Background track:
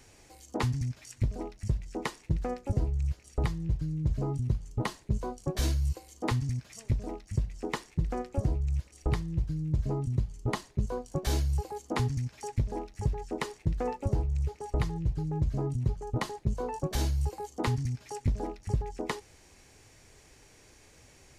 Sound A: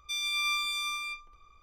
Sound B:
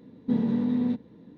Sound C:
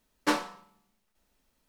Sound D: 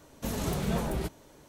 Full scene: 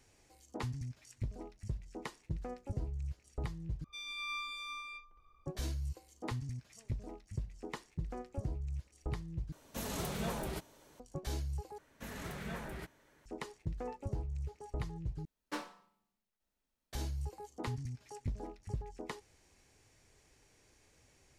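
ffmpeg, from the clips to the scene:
ffmpeg -i bed.wav -i cue0.wav -i cue1.wav -i cue2.wav -i cue3.wav -filter_complex "[4:a]asplit=2[link_01][link_02];[0:a]volume=-10dB[link_03];[1:a]lowpass=frequency=1800:poles=1[link_04];[link_01]lowshelf=frequency=480:gain=-6.5[link_05];[link_02]equalizer=frequency=1800:width_type=o:width=1.1:gain=12[link_06];[link_03]asplit=5[link_07][link_08][link_09][link_10][link_11];[link_07]atrim=end=3.844[link_12];[link_04]atrim=end=1.62,asetpts=PTS-STARTPTS,volume=-6dB[link_13];[link_08]atrim=start=5.456:end=9.524[link_14];[link_05]atrim=end=1.48,asetpts=PTS-STARTPTS,volume=-3.5dB[link_15];[link_09]atrim=start=10.996:end=11.784[link_16];[link_06]atrim=end=1.48,asetpts=PTS-STARTPTS,volume=-14dB[link_17];[link_10]atrim=start=13.256:end=15.254[link_18];[3:a]atrim=end=1.68,asetpts=PTS-STARTPTS,volume=-14.5dB[link_19];[link_11]atrim=start=16.926[link_20];[link_12][link_13]acrossfade=duration=0.004:curve1=hsin:curve2=hsin[link_21];[link_21][link_14]acrossfade=duration=0.004:curve1=hsin:curve2=hsin[link_22];[link_22][link_15]acrossfade=duration=0.004:curve1=hsin:curve2=hsin[link_23];[link_23][link_16]acrossfade=duration=0.004:curve1=hsin:curve2=hsin[link_24];[link_24][link_17]acrossfade=duration=0.004:curve1=hsin:curve2=hsin[link_25];[link_25][link_18]acrossfade=duration=0.004:curve1=hsin:curve2=hsin[link_26];[link_26][link_19]acrossfade=duration=0.004:curve1=hsin:curve2=hsin[link_27];[link_27][link_20]acrossfade=duration=0.004:curve1=hsin:curve2=hsin" out.wav

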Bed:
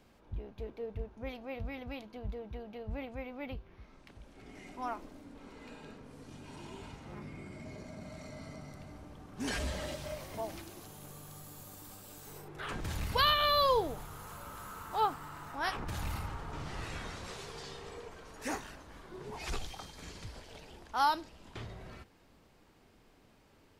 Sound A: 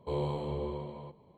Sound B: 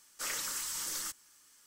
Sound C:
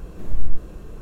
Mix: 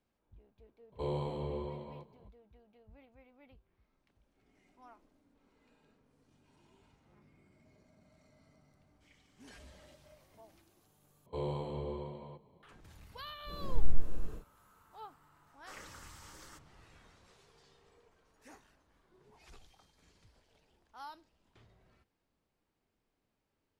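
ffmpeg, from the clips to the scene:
ffmpeg -i bed.wav -i cue0.wav -i cue1.wav -i cue2.wav -filter_complex "[1:a]asplit=2[link_01][link_02];[2:a]asplit=2[link_03][link_04];[0:a]volume=-19.5dB[link_05];[link_03]asplit=3[link_06][link_07][link_08];[link_06]bandpass=frequency=270:width_type=q:width=8,volume=0dB[link_09];[link_07]bandpass=frequency=2290:width_type=q:width=8,volume=-6dB[link_10];[link_08]bandpass=frequency=3010:width_type=q:width=8,volume=-9dB[link_11];[link_09][link_10][link_11]amix=inputs=3:normalize=0[link_12];[3:a]aecho=1:1:262:0.316[link_13];[link_04]lowpass=frequency=1100:poles=1[link_14];[link_05]asplit=2[link_15][link_16];[link_15]atrim=end=11.264[link_17];[link_02]atrim=end=1.37,asetpts=PTS-STARTPTS,volume=-4dB[link_18];[link_16]atrim=start=12.626[link_19];[link_01]atrim=end=1.37,asetpts=PTS-STARTPTS,volume=-3dB,afade=type=in:duration=0.004:curve=hsin,afade=type=out:start_time=1.366:duration=0.004:curve=hsin,adelay=920[link_20];[link_12]atrim=end=1.66,asetpts=PTS-STARTPTS,volume=-15dB,afade=type=in:duration=0.004:curve=hsin,afade=type=out:start_time=1.656:duration=0.004:curve=hsin,adelay=8810[link_21];[link_13]atrim=end=1.01,asetpts=PTS-STARTPTS,volume=-6.5dB,afade=type=in:duration=0.1,afade=type=out:start_time=0.91:duration=0.1,adelay=13440[link_22];[link_14]atrim=end=1.66,asetpts=PTS-STARTPTS,volume=-5dB,afade=type=in:duration=0.004:curve=hsin,afade=type=out:start_time=1.656:duration=0.004:curve=hsin,adelay=15470[link_23];[link_17][link_18]acrossfade=duration=0.004:curve1=hsin:curve2=hsin[link_24];[link_24][link_19]acrossfade=duration=0.004:curve1=hsin:curve2=hsin[link_25];[link_25][link_20][link_21][link_22][link_23]amix=inputs=5:normalize=0" out.wav

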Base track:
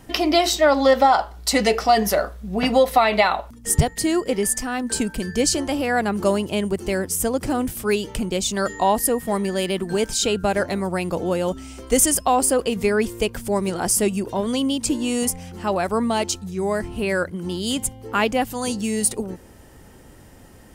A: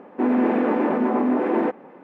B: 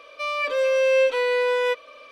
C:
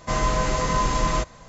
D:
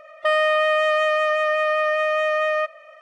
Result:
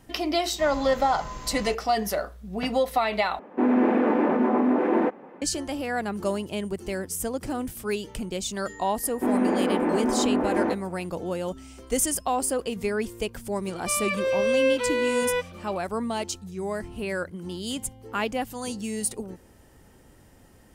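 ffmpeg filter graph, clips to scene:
ffmpeg -i bed.wav -i cue0.wav -i cue1.wav -i cue2.wav -filter_complex "[1:a]asplit=2[link_01][link_02];[0:a]volume=-7.5dB[link_03];[3:a]aeval=exprs='sgn(val(0))*max(abs(val(0))-0.00531,0)':channel_layout=same[link_04];[link_03]asplit=2[link_05][link_06];[link_05]atrim=end=3.394[link_07];[link_01]atrim=end=2.03,asetpts=PTS-STARTPTS,volume=-1dB[link_08];[link_06]atrim=start=5.416[link_09];[link_04]atrim=end=1.48,asetpts=PTS-STARTPTS,volume=-15dB,afade=type=in:duration=0.004:curve=hsin,afade=type=out:start_time=1.476:duration=0.004:curve=hsin,adelay=510[link_10];[link_02]atrim=end=2.03,asetpts=PTS-STARTPTS,volume=-3.5dB,afade=type=in:duration=0.004:curve=hsin,afade=type=out:start_time=2.026:duration=0.004:curve=hsin,adelay=9030[link_11];[2:a]atrim=end=2.11,asetpts=PTS-STARTPTS,volume=-3.5dB,afade=type=in:duration=0.004:curve=hsin,afade=type=out:start_time=2.106:duration=0.004:curve=hsin,adelay=13670[link_12];[link_07][link_08]acrossfade=duration=0.004:curve1=hsin:curve2=hsin[link_13];[link_13][link_09]acrossfade=duration=0.004:curve1=hsin:curve2=hsin[link_14];[link_14][link_10][link_11][link_12]amix=inputs=4:normalize=0" out.wav

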